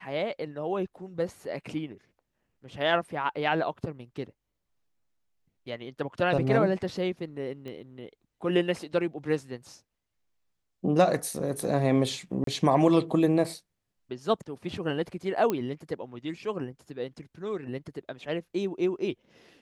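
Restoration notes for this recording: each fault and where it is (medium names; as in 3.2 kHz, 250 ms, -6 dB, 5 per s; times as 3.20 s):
7.68 s: pop -28 dBFS
12.44–12.47 s: dropout 33 ms
15.50 s: pop -14 dBFS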